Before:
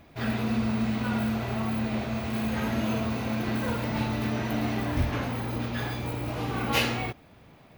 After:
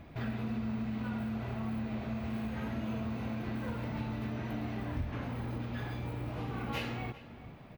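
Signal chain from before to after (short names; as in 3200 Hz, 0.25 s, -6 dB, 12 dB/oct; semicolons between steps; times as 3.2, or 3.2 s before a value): tone controls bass +5 dB, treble -8 dB; compressor 2.5:1, threshold -39 dBFS, peak gain reduction 15 dB; outdoor echo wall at 68 m, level -15 dB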